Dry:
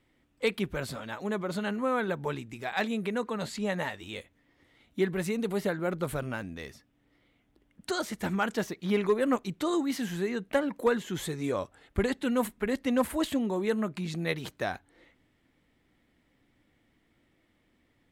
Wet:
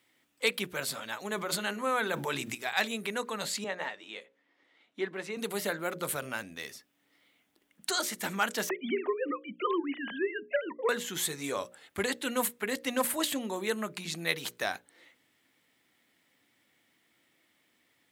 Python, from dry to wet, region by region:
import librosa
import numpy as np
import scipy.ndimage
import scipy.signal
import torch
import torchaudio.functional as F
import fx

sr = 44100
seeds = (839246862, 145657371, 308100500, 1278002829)

y = fx.chain(x, sr, fx.hum_notches(base_hz=50, count=7),
    fx.sustainer(db_per_s=20.0), at=(1.29, 2.55))
y = fx.chain(y, sr, fx.highpass(hz=260.0, slope=12),
    fx.spacing_loss(db_at_10k=22), at=(3.64, 5.37))
y = fx.chain(y, sr, fx.sine_speech(),
    fx.band_squash(depth_pct=100), at=(8.69, 10.89))
y = scipy.signal.sosfilt(scipy.signal.butter(2, 100.0, 'highpass', fs=sr, output='sos'), y)
y = fx.tilt_eq(y, sr, slope=3.0)
y = fx.hum_notches(y, sr, base_hz=60, count=10)